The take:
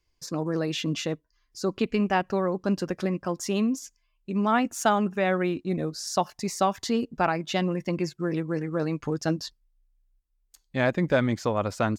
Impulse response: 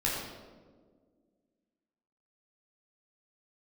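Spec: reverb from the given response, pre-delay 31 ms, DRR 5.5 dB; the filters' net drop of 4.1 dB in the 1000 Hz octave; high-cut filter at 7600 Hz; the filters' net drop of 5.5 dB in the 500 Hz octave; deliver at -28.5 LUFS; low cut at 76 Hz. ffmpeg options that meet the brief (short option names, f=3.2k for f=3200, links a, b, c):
-filter_complex "[0:a]highpass=76,lowpass=7.6k,equalizer=f=500:t=o:g=-6.5,equalizer=f=1k:t=o:g=-3,asplit=2[a][b];[1:a]atrim=start_sample=2205,adelay=31[c];[b][c]afir=irnorm=-1:irlink=0,volume=-13.5dB[d];[a][d]amix=inputs=2:normalize=0"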